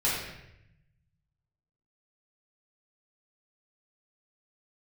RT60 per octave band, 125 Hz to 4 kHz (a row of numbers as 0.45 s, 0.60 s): 1.8 s, 1.2 s, 0.90 s, 0.75 s, 0.90 s, 0.70 s